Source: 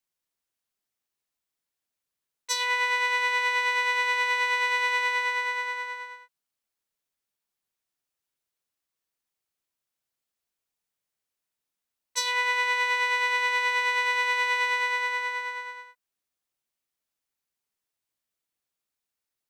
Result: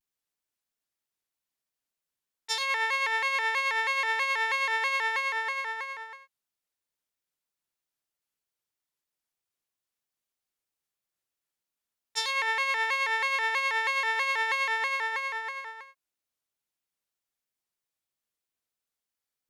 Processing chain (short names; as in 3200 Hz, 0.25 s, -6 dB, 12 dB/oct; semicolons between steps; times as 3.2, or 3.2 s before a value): shaped vibrato square 3.1 Hz, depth 160 cents; gain -2.5 dB